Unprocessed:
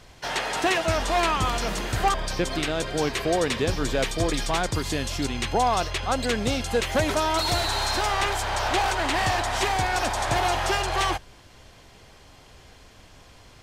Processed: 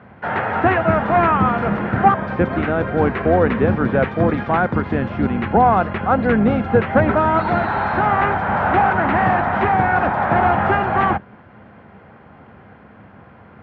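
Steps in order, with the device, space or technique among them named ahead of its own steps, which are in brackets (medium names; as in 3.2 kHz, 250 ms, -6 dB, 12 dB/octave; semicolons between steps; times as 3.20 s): sub-octave bass pedal (octave divider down 2 oct, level +4 dB; cabinet simulation 86–2000 Hz, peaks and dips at 210 Hz +10 dB, 500 Hz +3 dB, 800 Hz +4 dB, 1.4 kHz +6 dB); trim +5.5 dB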